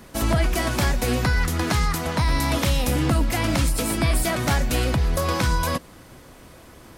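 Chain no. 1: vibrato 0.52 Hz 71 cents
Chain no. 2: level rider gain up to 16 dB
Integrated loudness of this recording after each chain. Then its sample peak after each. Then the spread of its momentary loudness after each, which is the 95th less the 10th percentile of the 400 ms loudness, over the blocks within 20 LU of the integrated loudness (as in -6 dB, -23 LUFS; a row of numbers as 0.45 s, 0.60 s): -22.5 LUFS, -13.5 LUFS; -10.0 dBFS, -1.0 dBFS; 2 LU, 5 LU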